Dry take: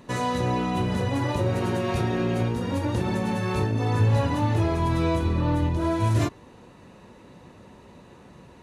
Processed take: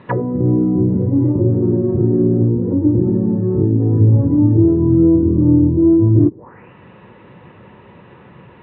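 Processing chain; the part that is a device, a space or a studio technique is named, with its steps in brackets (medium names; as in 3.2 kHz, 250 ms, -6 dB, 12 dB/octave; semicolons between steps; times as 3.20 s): envelope filter bass rig (touch-sensitive low-pass 310–4200 Hz down, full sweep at -23.5 dBFS; cabinet simulation 89–2200 Hz, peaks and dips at 120 Hz +4 dB, 260 Hz -6 dB, 670 Hz -5 dB); trim +7.5 dB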